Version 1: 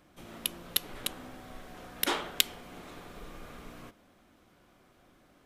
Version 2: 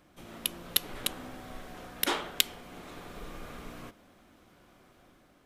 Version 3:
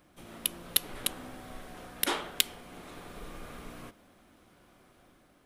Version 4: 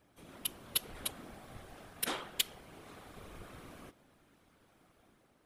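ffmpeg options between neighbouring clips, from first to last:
-af "dynaudnorm=f=220:g=5:m=3dB"
-af "aexciter=amount=1.9:drive=1.4:freq=9k,volume=-1dB"
-af "afftfilt=real='hypot(re,im)*cos(2*PI*random(0))':imag='hypot(re,im)*sin(2*PI*random(1))':win_size=512:overlap=0.75"

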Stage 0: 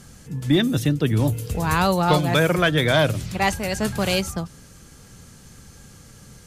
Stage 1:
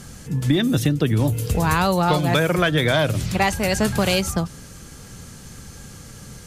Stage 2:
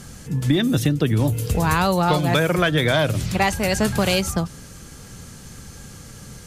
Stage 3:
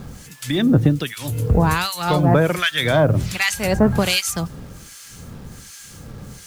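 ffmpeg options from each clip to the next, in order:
-af "acompressor=threshold=-21dB:ratio=6,volume=6dB"
-af anull
-filter_complex "[0:a]acrossover=split=1400[a][b];[a]aeval=exprs='val(0)*(1-1/2+1/2*cos(2*PI*1.3*n/s))':c=same[c];[b]aeval=exprs='val(0)*(1-1/2-1/2*cos(2*PI*1.3*n/s))':c=same[d];[c][d]amix=inputs=2:normalize=0,acrusher=bits=8:mix=0:aa=0.000001,volume=6dB"

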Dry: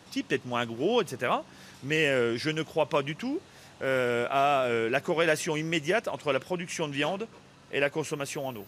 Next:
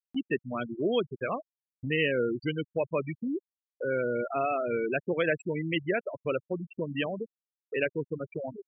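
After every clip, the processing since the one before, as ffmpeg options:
-af "afftfilt=real='re*gte(hypot(re,im),0.0891)':imag='im*gte(hypot(re,im),0.0891)':win_size=1024:overlap=0.75,equalizer=f=900:t=o:w=0.76:g=-9.5,acompressor=mode=upward:threshold=-29dB:ratio=2.5"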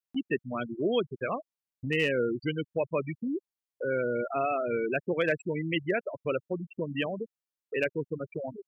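-af "asoftclip=type=hard:threshold=-17dB"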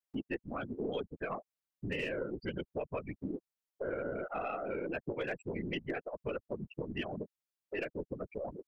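-af "afftfilt=real='hypot(re,im)*cos(2*PI*random(0))':imag='hypot(re,im)*sin(2*PI*random(1))':win_size=512:overlap=0.75,acompressor=threshold=-40dB:ratio=3,aeval=exprs='0.0335*(cos(1*acos(clip(val(0)/0.0335,-1,1)))-cos(1*PI/2))+0.00335*(cos(2*acos(clip(val(0)/0.0335,-1,1)))-cos(2*PI/2))':c=same,volume=4dB"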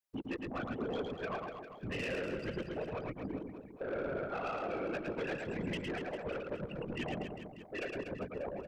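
-filter_complex "[0:a]afftfilt=real='hypot(re,im)*cos(2*PI*random(0))':imag='hypot(re,im)*sin(2*PI*random(1))':win_size=512:overlap=0.75,asoftclip=type=tanh:threshold=-38.5dB,asplit=2[a][b];[b]aecho=0:1:110|242|400.4|590.5|818.6:0.631|0.398|0.251|0.158|0.1[c];[a][c]amix=inputs=2:normalize=0,volume=5dB"

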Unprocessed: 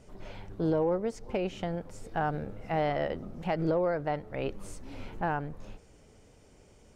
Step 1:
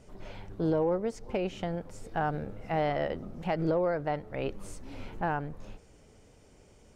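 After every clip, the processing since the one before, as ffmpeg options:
-af anull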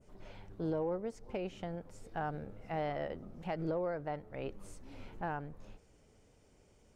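-af "adynamicequalizer=threshold=0.00251:dfrequency=4100:dqfactor=0.7:tfrequency=4100:tqfactor=0.7:attack=5:release=100:ratio=0.375:range=2:mode=cutabove:tftype=bell,volume=-7.5dB"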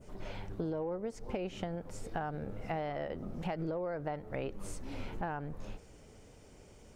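-af "acompressor=threshold=-42dB:ratio=12,volume=9dB"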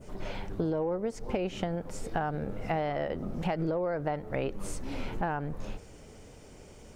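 -af "bandreject=f=50:t=h:w=6,bandreject=f=100:t=h:w=6,volume=6dB"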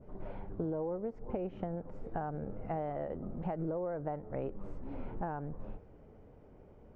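-af "lowpass=1.1k,volume=-5.5dB"

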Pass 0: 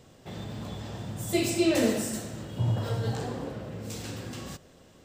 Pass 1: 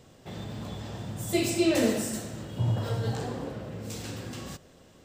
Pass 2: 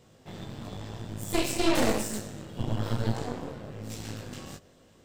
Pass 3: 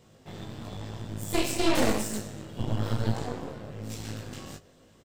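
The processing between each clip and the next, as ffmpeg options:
-af anull
-af "flanger=delay=18:depth=4:speed=1,aeval=exprs='0.188*(cos(1*acos(clip(val(0)/0.188,-1,1)))-cos(1*PI/2))+0.0531*(cos(6*acos(clip(val(0)/0.188,-1,1)))-cos(6*PI/2))':c=same"
-filter_complex "[0:a]asplit=2[a][b];[b]adelay=19,volume=-12dB[c];[a][c]amix=inputs=2:normalize=0"

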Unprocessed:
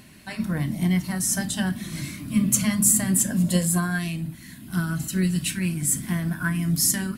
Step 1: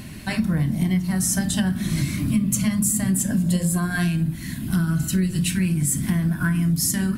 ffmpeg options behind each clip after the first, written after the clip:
-af "lowshelf=f=220:g=9.5,bandreject=f=59.25:t=h:w=4,bandreject=f=118.5:t=h:w=4,bandreject=f=177.75:t=h:w=4,bandreject=f=237:t=h:w=4,bandreject=f=296.25:t=h:w=4,bandreject=f=355.5:t=h:w=4,bandreject=f=414.75:t=h:w=4,bandreject=f=474:t=h:w=4,bandreject=f=533.25:t=h:w=4,bandreject=f=592.5:t=h:w=4,bandreject=f=651.75:t=h:w=4,bandreject=f=711:t=h:w=4,bandreject=f=770.25:t=h:w=4,bandreject=f=829.5:t=h:w=4,bandreject=f=888.75:t=h:w=4,bandreject=f=948:t=h:w=4,bandreject=f=1.00725k:t=h:w=4,bandreject=f=1.0665k:t=h:w=4,bandreject=f=1.12575k:t=h:w=4,bandreject=f=1.185k:t=h:w=4,bandreject=f=1.24425k:t=h:w=4,bandreject=f=1.3035k:t=h:w=4,bandreject=f=1.36275k:t=h:w=4,bandreject=f=1.422k:t=h:w=4,bandreject=f=1.48125k:t=h:w=4,bandreject=f=1.5405k:t=h:w=4,bandreject=f=1.59975k:t=h:w=4,bandreject=f=1.659k:t=h:w=4,bandreject=f=1.71825k:t=h:w=4,bandreject=f=1.7775k:t=h:w=4,acompressor=threshold=-27dB:ratio=6,volume=8dB"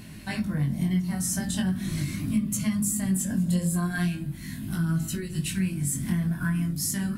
-af "flanger=delay=18.5:depth=4.4:speed=0.4,volume=-3dB"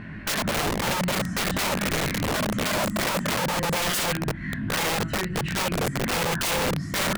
-af "lowpass=f=1.7k:t=q:w=2.8,aeval=exprs='(mod(18.8*val(0)+1,2)-1)/18.8':c=same,volume=5dB"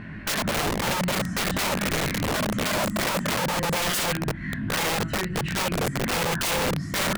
-af anull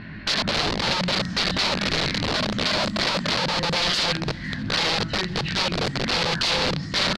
-af "lowpass=f=4.4k:t=q:w=3.5,aecho=1:1:507|1014|1521:0.0631|0.0341|0.0184"

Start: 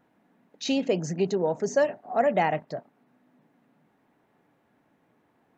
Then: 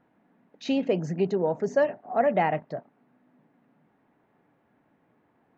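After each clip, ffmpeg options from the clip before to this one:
-af "bass=f=250:g=1,treble=f=4k:g=-14"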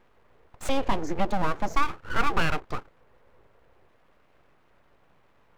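-filter_complex "[0:a]asplit=2[a][b];[b]acompressor=threshold=-31dB:ratio=6,volume=1dB[c];[a][c]amix=inputs=2:normalize=0,aeval=exprs='abs(val(0))':c=same"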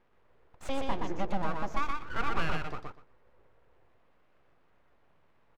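-af "highshelf=f=7.7k:g=-9.5,aecho=1:1:122|244|366:0.668|0.107|0.0171,volume=-7.5dB"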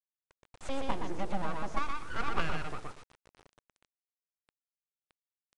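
-af "acrusher=bits=6:dc=4:mix=0:aa=0.000001,aeval=exprs='0.168*(cos(1*acos(clip(val(0)/0.168,-1,1)))-cos(1*PI/2))+0.0237*(cos(3*acos(clip(val(0)/0.168,-1,1)))-cos(3*PI/2))+0.0106*(cos(4*acos(clip(val(0)/0.168,-1,1)))-cos(4*PI/2))+0.00841*(cos(5*acos(clip(val(0)/0.168,-1,1)))-cos(5*PI/2))':c=same,aresample=22050,aresample=44100,volume=2.5dB"

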